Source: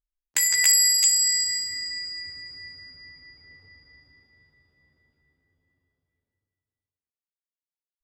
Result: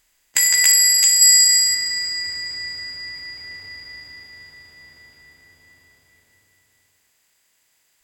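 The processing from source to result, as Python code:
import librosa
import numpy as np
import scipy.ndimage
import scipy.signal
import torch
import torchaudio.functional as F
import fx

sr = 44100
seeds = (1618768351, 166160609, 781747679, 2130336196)

y = fx.bin_compress(x, sr, power=0.6)
y = fx.high_shelf(y, sr, hz=4600.0, db=8.0, at=(1.21, 1.75))
y = y * 10.0 ** (3.0 / 20.0)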